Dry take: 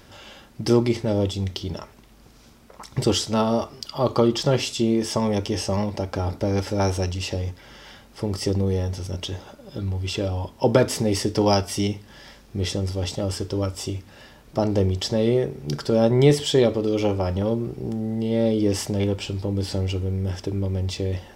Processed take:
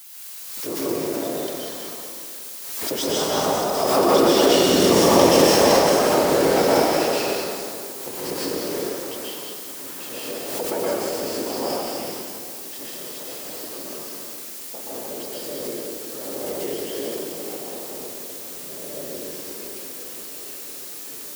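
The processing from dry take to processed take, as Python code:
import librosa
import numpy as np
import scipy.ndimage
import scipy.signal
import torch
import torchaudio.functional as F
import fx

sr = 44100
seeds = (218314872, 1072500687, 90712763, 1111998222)

p1 = fx.delta_hold(x, sr, step_db=-28.0)
p2 = fx.doppler_pass(p1, sr, speed_mps=18, closest_m=14.0, pass_at_s=5.48)
p3 = scipy.signal.sosfilt(scipy.signal.butter(4, 310.0, 'highpass', fs=sr, output='sos'), p2)
p4 = fx.dmg_noise_colour(p3, sr, seeds[0], colour='blue', level_db=-48.0)
p5 = fx.whisperise(p4, sr, seeds[1])
p6 = p5 + fx.echo_stepped(p5, sr, ms=198, hz=4300.0, octaves=0.7, feedback_pct=70, wet_db=-3, dry=0)
p7 = fx.rev_plate(p6, sr, seeds[2], rt60_s=2.5, hf_ratio=0.55, predelay_ms=110, drr_db=-8.0)
p8 = fx.pre_swell(p7, sr, db_per_s=38.0)
y = p8 * 10.0 ** (4.5 / 20.0)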